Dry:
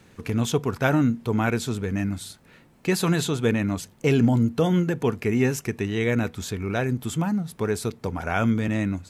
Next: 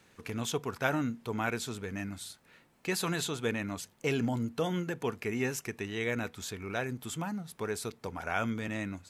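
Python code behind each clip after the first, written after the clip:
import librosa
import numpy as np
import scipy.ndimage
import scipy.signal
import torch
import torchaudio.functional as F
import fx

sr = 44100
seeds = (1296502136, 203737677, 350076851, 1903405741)

y = fx.low_shelf(x, sr, hz=400.0, db=-9.5)
y = y * 10.0 ** (-5.0 / 20.0)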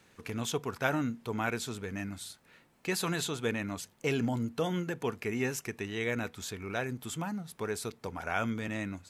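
y = fx.quant_float(x, sr, bits=8)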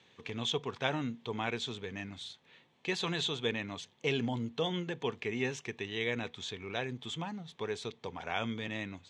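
y = fx.cabinet(x, sr, low_hz=120.0, low_slope=12, high_hz=5900.0, hz=(200.0, 300.0, 620.0, 1400.0, 3400.0, 5000.0), db=(-5, -5, -4, -9, 9, -7))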